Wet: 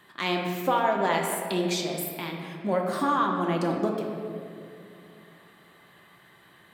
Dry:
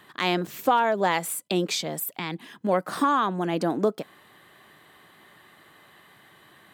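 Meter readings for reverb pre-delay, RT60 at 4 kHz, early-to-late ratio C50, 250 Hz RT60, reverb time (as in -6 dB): 5 ms, 1.4 s, 2.5 dB, 3.2 s, 2.6 s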